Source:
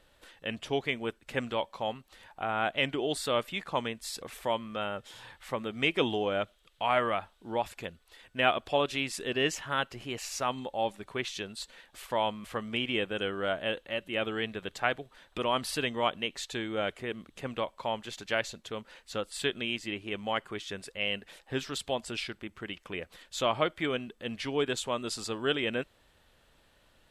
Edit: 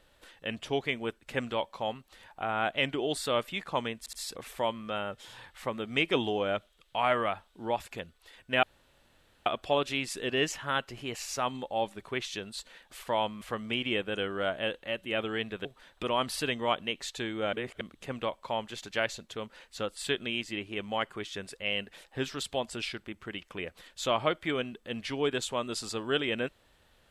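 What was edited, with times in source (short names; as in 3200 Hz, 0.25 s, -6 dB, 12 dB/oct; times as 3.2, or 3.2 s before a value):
3.99 stutter 0.07 s, 3 plays
8.49 insert room tone 0.83 s
14.68–15 cut
16.88–17.16 reverse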